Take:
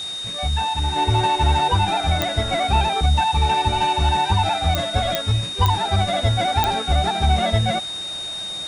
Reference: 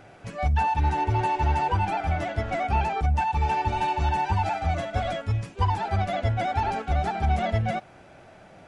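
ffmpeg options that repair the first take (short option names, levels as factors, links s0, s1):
-af "adeclick=t=4,bandreject=f=3700:w=30,afwtdn=0.013,asetnsamples=n=441:p=0,asendcmd='0.96 volume volume -5.5dB',volume=1"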